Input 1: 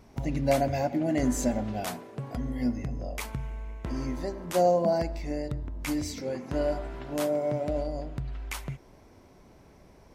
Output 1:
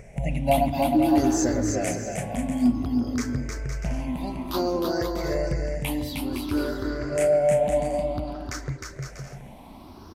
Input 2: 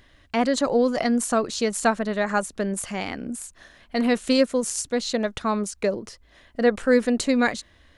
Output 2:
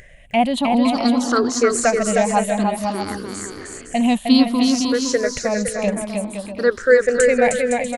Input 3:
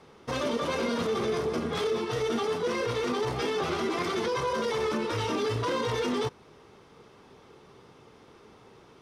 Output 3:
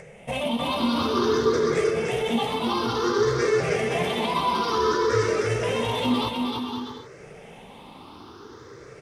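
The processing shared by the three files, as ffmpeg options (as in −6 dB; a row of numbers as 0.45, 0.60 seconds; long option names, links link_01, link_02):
-af "afftfilt=real='re*pow(10,20/40*sin(2*PI*(0.52*log(max(b,1)*sr/1024/100)/log(2)-(0.56)*(pts-256)/sr)))':imag='im*pow(10,20/40*sin(2*PI*(0.52*log(max(b,1)*sr/1024/100)/log(2)-(0.56)*(pts-256)/sr)))':win_size=1024:overlap=0.75,acompressor=mode=upward:threshold=-38dB:ratio=2.5,aecho=1:1:310|511.5|642.5|727.6|782.9:0.631|0.398|0.251|0.158|0.1,volume=-1dB"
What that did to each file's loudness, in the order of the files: +5.0, +5.5, +5.0 LU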